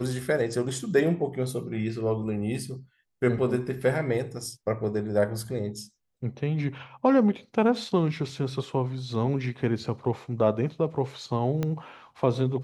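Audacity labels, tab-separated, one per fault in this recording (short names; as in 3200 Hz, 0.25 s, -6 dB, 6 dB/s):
11.630000	11.630000	pop -16 dBFS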